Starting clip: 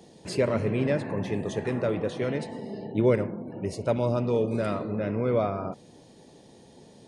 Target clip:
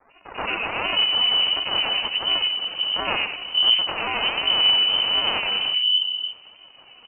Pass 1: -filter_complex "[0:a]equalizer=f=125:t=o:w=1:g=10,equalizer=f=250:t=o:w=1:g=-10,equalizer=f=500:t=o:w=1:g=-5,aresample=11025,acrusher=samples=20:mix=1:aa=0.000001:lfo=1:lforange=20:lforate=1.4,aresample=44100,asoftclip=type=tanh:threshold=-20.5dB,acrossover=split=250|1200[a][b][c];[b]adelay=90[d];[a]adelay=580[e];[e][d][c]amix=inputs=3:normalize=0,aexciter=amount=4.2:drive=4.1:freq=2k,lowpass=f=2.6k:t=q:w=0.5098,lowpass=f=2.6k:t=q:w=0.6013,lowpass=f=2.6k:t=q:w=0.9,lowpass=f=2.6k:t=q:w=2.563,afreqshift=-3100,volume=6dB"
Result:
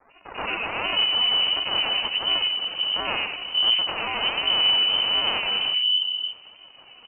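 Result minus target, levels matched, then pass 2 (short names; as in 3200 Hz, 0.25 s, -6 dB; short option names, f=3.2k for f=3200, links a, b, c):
soft clip: distortion +13 dB
-filter_complex "[0:a]equalizer=f=125:t=o:w=1:g=10,equalizer=f=250:t=o:w=1:g=-10,equalizer=f=500:t=o:w=1:g=-5,aresample=11025,acrusher=samples=20:mix=1:aa=0.000001:lfo=1:lforange=20:lforate=1.4,aresample=44100,asoftclip=type=tanh:threshold=-12dB,acrossover=split=250|1200[a][b][c];[b]adelay=90[d];[a]adelay=580[e];[e][d][c]amix=inputs=3:normalize=0,aexciter=amount=4.2:drive=4.1:freq=2k,lowpass=f=2.6k:t=q:w=0.5098,lowpass=f=2.6k:t=q:w=0.6013,lowpass=f=2.6k:t=q:w=0.9,lowpass=f=2.6k:t=q:w=2.563,afreqshift=-3100,volume=6dB"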